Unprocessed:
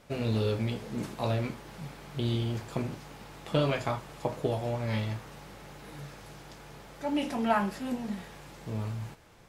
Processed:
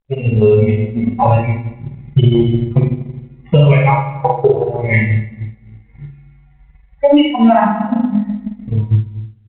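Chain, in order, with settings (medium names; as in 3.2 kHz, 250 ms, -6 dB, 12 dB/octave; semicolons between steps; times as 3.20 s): expander on every frequency bin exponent 3; rippled Chebyshev low-pass 3 kHz, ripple 9 dB; in parallel at +2 dB: compression 5:1, threshold -55 dBFS, peak gain reduction 25.5 dB; on the sum: reverberation RT60 1.0 s, pre-delay 3 ms, DRR -2 dB; transient shaper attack +10 dB, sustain -7 dB; level rider gain up to 10 dB; doubling 48 ms -5.5 dB; loudness maximiser +18 dB; trim -1 dB; µ-law 64 kbps 8 kHz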